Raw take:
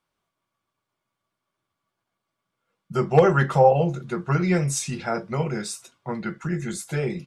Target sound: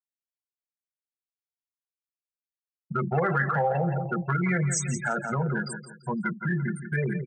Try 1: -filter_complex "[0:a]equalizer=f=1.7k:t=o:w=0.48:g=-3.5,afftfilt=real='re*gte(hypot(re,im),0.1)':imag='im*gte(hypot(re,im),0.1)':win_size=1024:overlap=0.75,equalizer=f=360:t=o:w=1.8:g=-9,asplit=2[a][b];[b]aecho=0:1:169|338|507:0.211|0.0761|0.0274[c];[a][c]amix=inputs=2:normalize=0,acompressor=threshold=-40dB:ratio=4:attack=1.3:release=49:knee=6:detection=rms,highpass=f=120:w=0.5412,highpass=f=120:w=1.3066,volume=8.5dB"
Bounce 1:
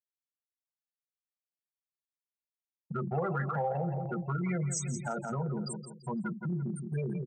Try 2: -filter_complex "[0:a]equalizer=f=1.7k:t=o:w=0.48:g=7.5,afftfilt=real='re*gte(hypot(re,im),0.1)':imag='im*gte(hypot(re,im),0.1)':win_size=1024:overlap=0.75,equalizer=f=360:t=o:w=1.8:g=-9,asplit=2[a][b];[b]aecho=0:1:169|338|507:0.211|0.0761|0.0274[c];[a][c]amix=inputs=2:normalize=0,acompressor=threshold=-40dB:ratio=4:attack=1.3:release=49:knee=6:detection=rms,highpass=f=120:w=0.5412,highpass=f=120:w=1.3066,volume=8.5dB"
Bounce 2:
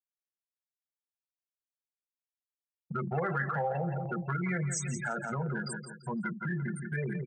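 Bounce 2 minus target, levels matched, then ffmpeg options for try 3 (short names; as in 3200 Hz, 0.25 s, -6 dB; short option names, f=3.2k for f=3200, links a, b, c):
compressor: peak gain reduction +6.5 dB
-filter_complex "[0:a]equalizer=f=1.7k:t=o:w=0.48:g=7.5,afftfilt=real='re*gte(hypot(re,im),0.1)':imag='im*gte(hypot(re,im),0.1)':win_size=1024:overlap=0.75,equalizer=f=360:t=o:w=1.8:g=-9,asplit=2[a][b];[b]aecho=0:1:169|338|507:0.211|0.0761|0.0274[c];[a][c]amix=inputs=2:normalize=0,acompressor=threshold=-31dB:ratio=4:attack=1.3:release=49:knee=6:detection=rms,highpass=f=120:w=0.5412,highpass=f=120:w=1.3066,volume=8.5dB"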